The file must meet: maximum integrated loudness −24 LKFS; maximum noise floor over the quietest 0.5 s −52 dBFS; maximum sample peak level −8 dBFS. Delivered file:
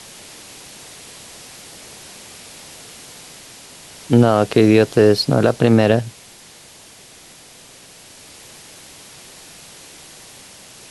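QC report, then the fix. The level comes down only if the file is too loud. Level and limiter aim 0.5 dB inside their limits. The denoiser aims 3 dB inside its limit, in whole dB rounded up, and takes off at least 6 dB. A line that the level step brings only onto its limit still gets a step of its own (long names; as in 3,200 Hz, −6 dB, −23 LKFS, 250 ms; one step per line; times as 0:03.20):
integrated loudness −14.5 LKFS: out of spec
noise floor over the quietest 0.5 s −44 dBFS: out of spec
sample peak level −2.0 dBFS: out of spec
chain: level −10 dB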